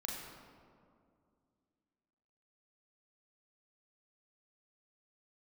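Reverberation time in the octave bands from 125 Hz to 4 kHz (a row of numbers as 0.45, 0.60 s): 2.7, 3.0, 2.4, 2.1, 1.5, 1.1 s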